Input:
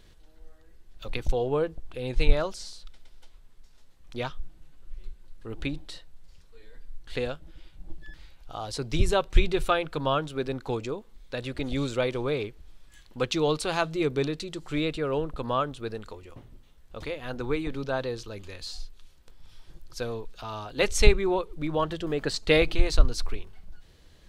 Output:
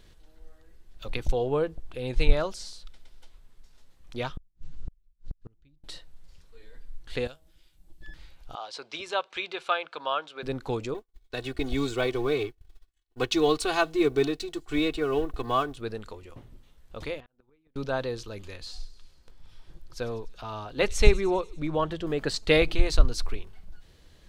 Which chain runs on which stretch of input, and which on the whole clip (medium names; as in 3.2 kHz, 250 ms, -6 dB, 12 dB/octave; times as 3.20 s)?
4.37–5.84 s: low-pass 6.9 kHz 24 dB/octave + tone controls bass +13 dB, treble +7 dB + inverted gate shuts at -22 dBFS, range -39 dB
7.27–8.01 s: pre-emphasis filter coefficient 0.8 + de-hum 159.4 Hz, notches 7
8.55–10.43 s: band-pass 720–4500 Hz + band-stop 1.9 kHz
10.94–15.77 s: companding laws mixed up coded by A + comb 2.7 ms, depth 83% + expander -40 dBFS
17.20–17.76 s: distance through air 180 m + inverted gate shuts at -25 dBFS, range -38 dB + compression 8:1, threshold -50 dBFS
18.57–22.07 s: treble shelf 3.9 kHz -6 dB + feedback echo behind a high-pass 99 ms, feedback 63%, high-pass 4.3 kHz, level -14 dB
whole clip: none